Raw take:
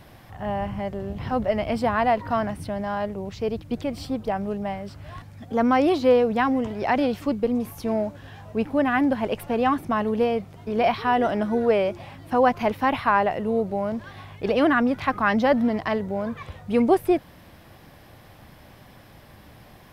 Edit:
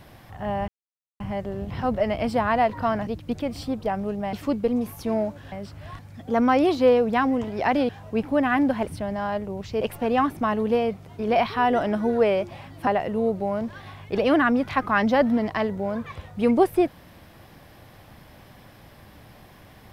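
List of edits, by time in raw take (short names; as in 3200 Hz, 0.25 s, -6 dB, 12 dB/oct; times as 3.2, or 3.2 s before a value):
0.68 insert silence 0.52 s
2.55–3.49 move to 9.29
7.12–8.31 move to 4.75
12.35–13.18 cut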